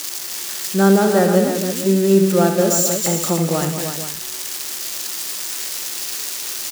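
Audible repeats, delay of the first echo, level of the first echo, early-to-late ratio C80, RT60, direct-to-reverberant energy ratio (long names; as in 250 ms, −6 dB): 4, 67 ms, −10.0 dB, no reverb audible, no reverb audible, no reverb audible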